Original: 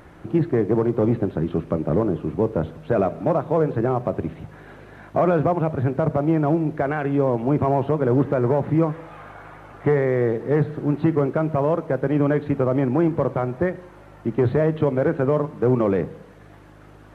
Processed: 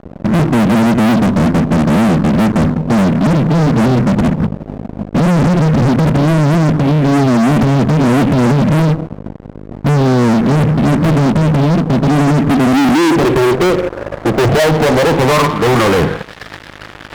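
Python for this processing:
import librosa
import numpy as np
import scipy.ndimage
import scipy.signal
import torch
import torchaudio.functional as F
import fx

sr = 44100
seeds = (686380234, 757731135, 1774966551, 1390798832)

y = fx.filter_sweep_lowpass(x, sr, from_hz=220.0, to_hz=1800.0, start_s=12.36, end_s=16.35, q=4.6)
y = fx.fuzz(y, sr, gain_db=32.0, gate_db=-41.0)
y = y * 10.0 ** (4.0 / 20.0)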